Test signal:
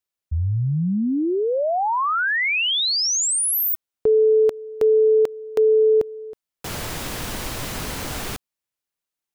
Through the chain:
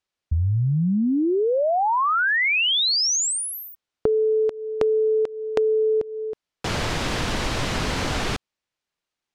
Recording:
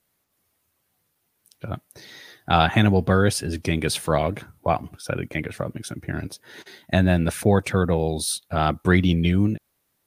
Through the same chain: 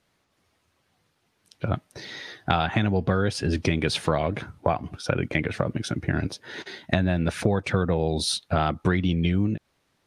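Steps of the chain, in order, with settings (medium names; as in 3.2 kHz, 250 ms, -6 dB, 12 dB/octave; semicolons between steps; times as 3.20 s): low-pass 5.4 kHz 12 dB/octave; compression 8:1, threshold -25 dBFS; trim +6 dB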